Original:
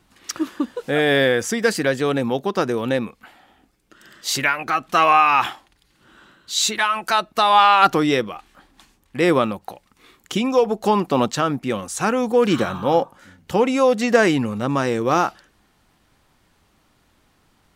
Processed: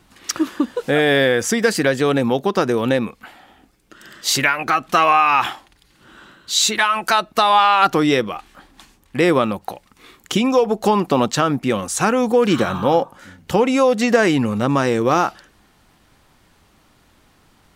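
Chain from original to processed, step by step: compressor 2:1, threshold -20 dBFS, peak gain reduction 6.5 dB; gain +5.5 dB

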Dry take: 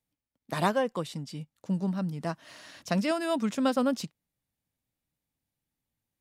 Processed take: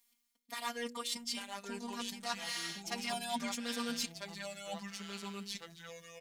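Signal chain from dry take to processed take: tracing distortion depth 0.03 ms; tilt shelf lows -9 dB, about 1200 Hz; reverse; compressor 10:1, threshold -42 dBFS, peak gain reduction 20.5 dB; reverse; comb 3.3 ms, depth 96%; robotiser 237 Hz; de-hum 60.24 Hz, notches 8; echoes that change speed 0.747 s, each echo -3 st, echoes 2, each echo -6 dB; gain +6.5 dB

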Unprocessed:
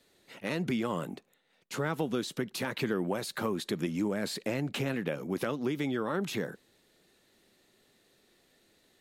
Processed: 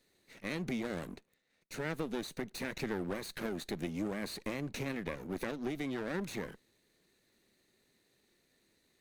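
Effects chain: minimum comb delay 0.48 ms; gain -5 dB

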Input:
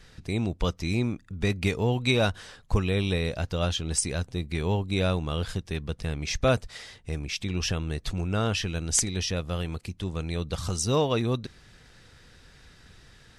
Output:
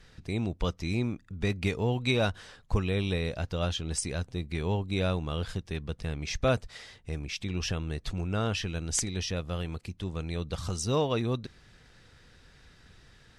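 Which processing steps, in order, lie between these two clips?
high shelf 7400 Hz -5.5 dB; gain -3 dB

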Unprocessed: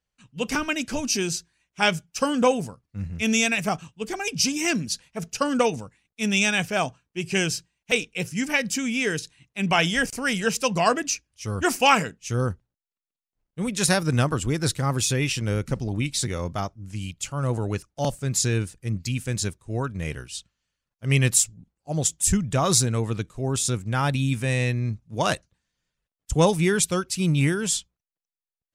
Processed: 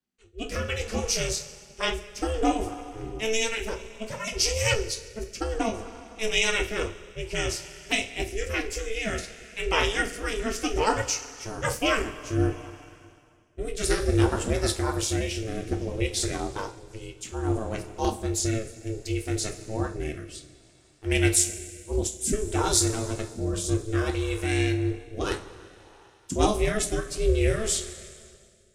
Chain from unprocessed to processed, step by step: two-slope reverb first 0.25 s, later 2.6 s, from -18 dB, DRR 2 dB; ring modulator 220 Hz; rotary speaker horn 0.6 Hz

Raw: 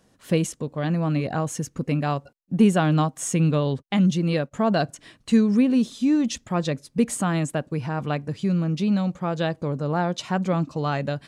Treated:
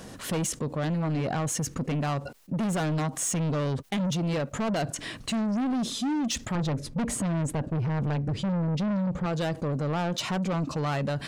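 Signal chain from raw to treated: 6.55–9.26 tilt -2.5 dB/oct; soft clip -25.5 dBFS, distortion -6 dB; fast leveller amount 50%

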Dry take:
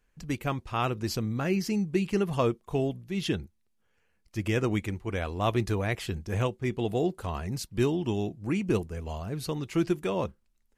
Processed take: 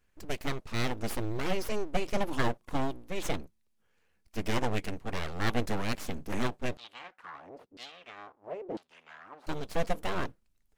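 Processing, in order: full-wave rectifier; 6.77–9.47 LFO band-pass saw down 1 Hz 340–4700 Hz

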